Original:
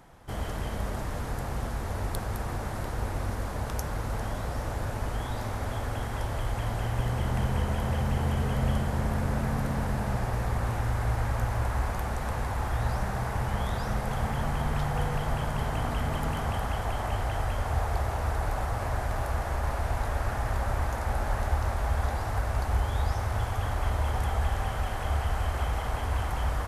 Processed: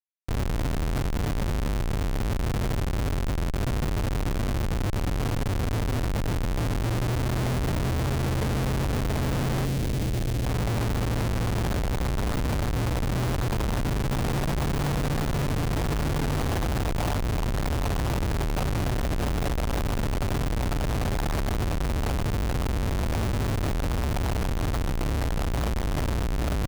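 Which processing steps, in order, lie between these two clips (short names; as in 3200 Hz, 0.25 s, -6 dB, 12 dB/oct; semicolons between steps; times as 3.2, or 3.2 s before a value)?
LPF 3200 Hz 24 dB/oct; comb 6.9 ms, depth 38%; Schmitt trigger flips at -30.5 dBFS; 9.65–10.46 bell 1100 Hz -9 dB 1.6 oct; gain +4 dB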